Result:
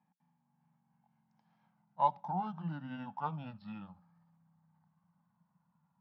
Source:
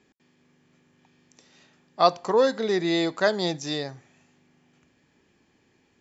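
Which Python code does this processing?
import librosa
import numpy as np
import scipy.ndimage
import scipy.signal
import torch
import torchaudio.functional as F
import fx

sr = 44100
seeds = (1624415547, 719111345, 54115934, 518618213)

y = fx.pitch_glide(x, sr, semitones=-9.5, runs='starting unshifted')
y = fx.double_bandpass(y, sr, hz=390.0, octaves=2.3)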